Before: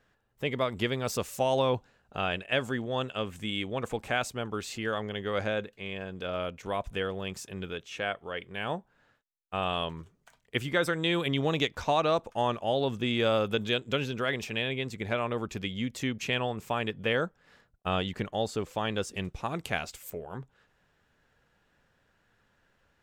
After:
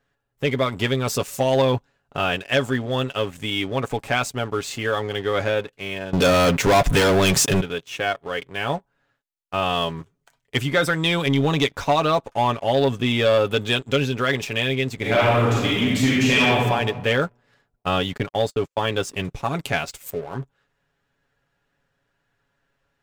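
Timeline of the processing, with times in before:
6.13–7.61 sample leveller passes 5
14.95–16.59 reverb throw, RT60 1.3 s, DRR -6 dB
18.17–18.93 gate -39 dBFS, range -36 dB
whole clip: comb 7.2 ms, depth 54%; sample leveller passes 2

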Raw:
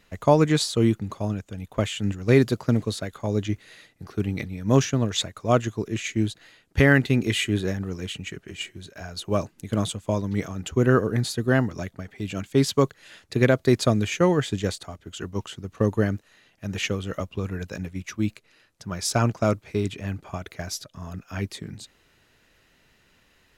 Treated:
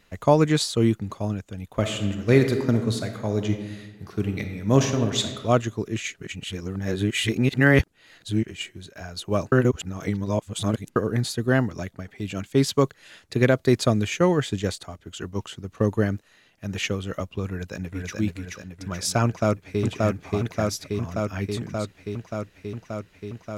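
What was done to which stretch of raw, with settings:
1.68–5.44 reverb throw, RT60 1.3 s, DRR 6 dB
6.14–8.45 reverse
9.52–10.96 reverse
17.49–18.18 echo throw 0.43 s, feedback 55%, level -2 dB
19.25–19.83 echo throw 0.58 s, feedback 80%, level -1 dB

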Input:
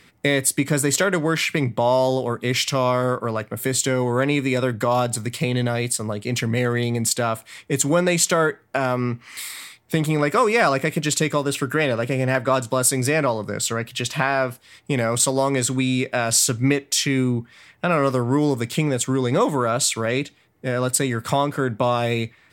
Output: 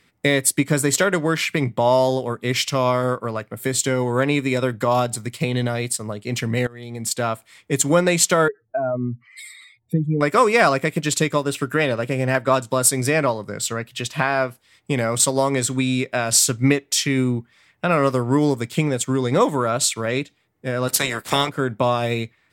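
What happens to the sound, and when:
6.67–7.25 fade in linear, from -16.5 dB
8.48–10.21 spectral contrast raised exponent 2.6
20.87–21.48 spectral limiter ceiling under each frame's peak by 21 dB
whole clip: upward expander 1.5:1, over -36 dBFS; gain +3 dB

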